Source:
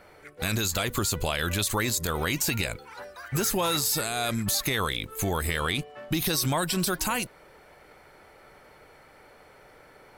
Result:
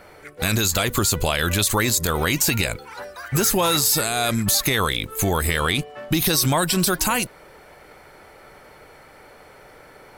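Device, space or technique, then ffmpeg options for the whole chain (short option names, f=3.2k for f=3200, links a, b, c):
exciter from parts: -filter_complex "[0:a]asplit=2[a][b];[b]highpass=4.1k,asoftclip=type=tanh:threshold=-24dB,volume=-13.5dB[c];[a][c]amix=inputs=2:normalize=0,volume=6.5dB"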